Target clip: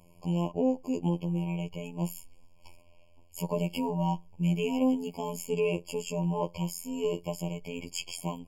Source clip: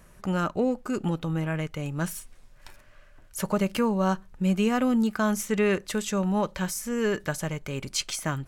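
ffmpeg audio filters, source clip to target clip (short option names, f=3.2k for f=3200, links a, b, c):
-af "afftfilt=real='hypot(re,im)*cos(PI*b)':imag='0':win_size=2048:overlap=0.75,afftfilt=real='re*eq(mod(floor(b*sr/1024/1100),2),0)':imag='im*eq(mod(floor(b*sr/1024/1100),2),0)':win_size=1024:overlap=0.75"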